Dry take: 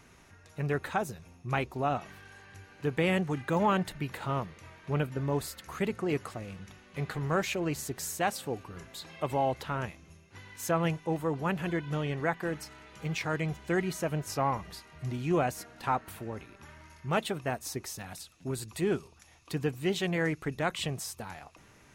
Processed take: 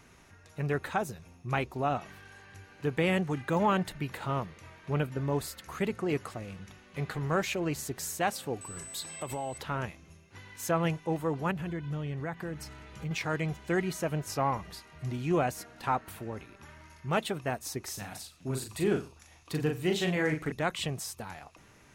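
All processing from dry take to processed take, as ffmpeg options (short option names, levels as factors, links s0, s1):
-filter_complex "[0:a]asettb=1/sr,asplit=3[s0][s1][s2];[s0]atrim=end=8.614[s3];[s1]atrim=start=8.61:end=9.58,asetpts=PTS-STARTPTS,afade=t=in:d=0.004:c=qsin,afade=t=out:st=0.966:d=0.004:c=qsin,aeval=exprs='val(0)+0.00355*sin(2*PI*8000*n/s)':c=same,acompressor=threshold=0.0251:ratio=5:attack=3.2:release=140:knee=1:detection=peak,highshelf=f=4200:g=8[s4];[s2]atrim=start=9.576[s5];[s3][s4]acrossfade=d=0.004:c1=hsin:c2=qsin[s6];[s6][s5]acrossfade=d=0.004:c1=qsin:c2=hsin,asettb=1/sr,asplit=3[s7][s8][s9];[s7]atrim=end=11.514[s10];[s8]atrim=start=11.51:end=13.11,asetpts=PTS-STARTPTS,afade=t=in:d=0.004:c=qsin,afade=t=out:st=1.596:d=0.004:c=qsin,equalizer=f=83:t=o:w=2.6:g=10,acompressor=threshold=0.0126:ratio=2:attack=3.2:release=140:knee=1:detection=peak[s11];[s9]atrim=start=13.106[s12];[s10][s11]acrossfade=d=0.004:c1=hsin:c2=qsin[s13];[s13][s12]acrossfade=d=0.004:c1=qsin:c2=hsin,asettb=1/sr,asplit=3[s14][s15][s16];[s14]atrim=end=17.834[s17];[s15]atrim=start=17.83:end=20.52,asetpts=PTS-STARTPTS,afade=t=in:d=0.004:c=qsin,afade=t=out:st=2.686:d=0.004:c=qsin,asplit=2[s18][s19];[s19]adelay=39,volume=0.596[s20];[s18][s20]amix=inputs=2:normalize=0,atrim=end_sample=118629,aecho=1:1:89:0.119,atrim=end_sample=118629[s21];[s16]atrim=start=20.516[s22];[s17][s21]acrossfade=d=0.004:c1=hsin:c2=qsin[s23];[s23][s22]acrossfade=d=0.004:c1=qsin:c2=hsin"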